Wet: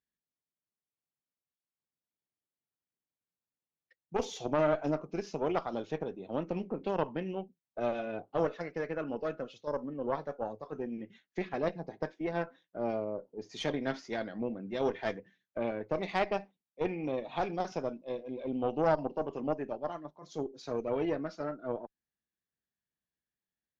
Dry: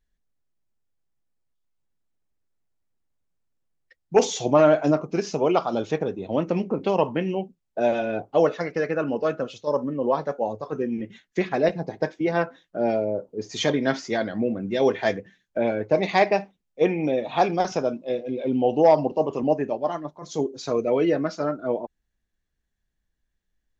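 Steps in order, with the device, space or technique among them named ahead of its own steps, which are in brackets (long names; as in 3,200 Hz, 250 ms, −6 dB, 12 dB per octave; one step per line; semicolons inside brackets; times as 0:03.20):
valve radio (band-pass filter 130–5,400 Hz; tube saturation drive 10 dB, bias 0.75; saturating transformer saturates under 290 Hz)
level −6.5 dB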